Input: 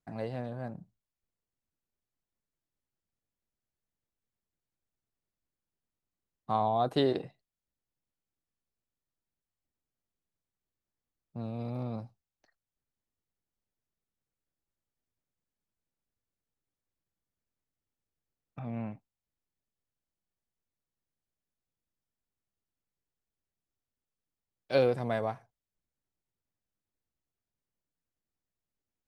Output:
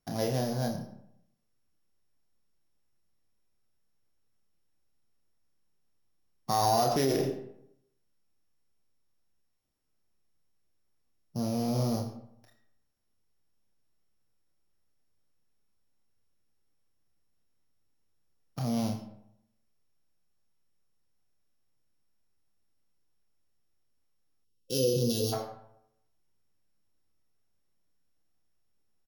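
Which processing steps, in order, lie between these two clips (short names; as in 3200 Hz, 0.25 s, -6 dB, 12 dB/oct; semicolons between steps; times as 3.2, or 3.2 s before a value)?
sample sorter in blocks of 8 samples; doubler 30 ms -6 dB; on a send at -8 dB: reverb RT60 0.75 s, pre-delay 20 ms; on the sum: spectral gain 24.44–25.33, 520–2600 Hz -27 dB; limiter -23 dBFS, peak gain reduction 10 dB; gain +6 dB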